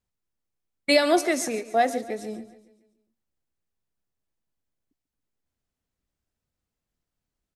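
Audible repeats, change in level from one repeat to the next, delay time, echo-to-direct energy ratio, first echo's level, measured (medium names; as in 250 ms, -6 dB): 4, -6.0 dB, 141 ms, -15.0 dB, -16.5 dB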